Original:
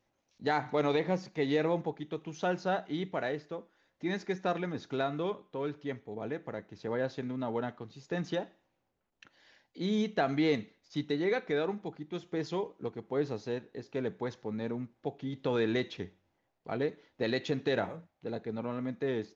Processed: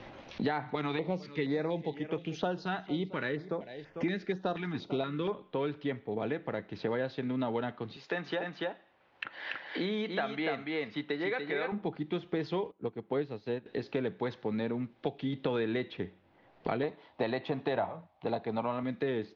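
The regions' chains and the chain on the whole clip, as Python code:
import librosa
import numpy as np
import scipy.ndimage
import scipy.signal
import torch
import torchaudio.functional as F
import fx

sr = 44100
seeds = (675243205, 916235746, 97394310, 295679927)

y = fx.chain(x, sr, fx.high_shelf(hz=4500.0, db=8.5),
    fx.echo_single(ms=447, db=-19.5),
    fx.filter_held_notch(hz=4.2, low_hz=530.0, high_hz=3900.0), at=(0.75, 5.33))
y = fx.chain(y, sr, fx.highpass(hz=1100.0, slope=6),
    fx.echo_single(ms=288, db=-3.0), at=(7.96, 11.72))
y = fx.chain(y, sr, fx.highpass(hz=41.0, slope=12),
    fx.high_shelf(hz=2300.0, db=-11.5),
    fx.upward_expand(threshold_db=-50.0, expansion=1.5), at=(12.71, 13.66))
y = fx.chain(y, sr, fx.highpass(hz=49.0, slope=12),
    fx.band_shelf(hz=840.0, db=10.5, octaves=1.1), at=(16.83, 18.83))
y = scipy.signal.sosfilt(scipy.signal.butter(4, 3900.0, 'lowpass', fs=sr, output='sos'), y)
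y = fx.band_squash(y, sr, depth_pct=100)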